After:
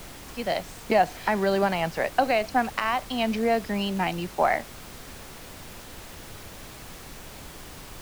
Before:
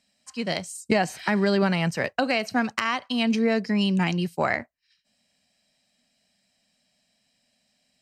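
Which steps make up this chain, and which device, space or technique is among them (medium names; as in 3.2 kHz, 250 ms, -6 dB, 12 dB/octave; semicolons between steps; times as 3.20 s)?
horn gramophone (band-pass 220–4400 Hz; peaking EQ 740 Hz +8.5 dB; wow and flutter; pink noise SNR 14 dB); trim -2.5 dB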